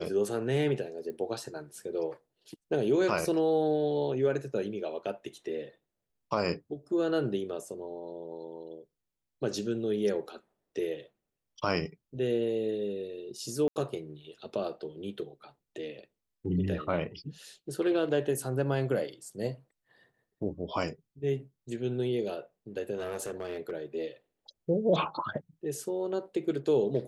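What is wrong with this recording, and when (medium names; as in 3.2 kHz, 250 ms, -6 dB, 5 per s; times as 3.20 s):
1.10 s: pop -29 dBFS
13.68–13.76 s: dropout 79 ms
22.95–23.71 s: clipped -30.5 dBFS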